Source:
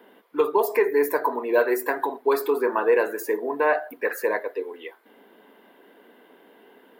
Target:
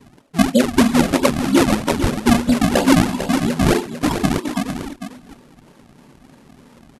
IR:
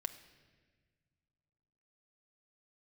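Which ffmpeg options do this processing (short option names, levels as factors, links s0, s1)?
-af "acrusher=samples=31:mix=1:aa=0.000001:lfo=1:lforange=49.6:lforate=3.1,asetrate=25476,aresample=44100,atempo=1.73107,aecho=1:1:449:0.355,volume=2.11"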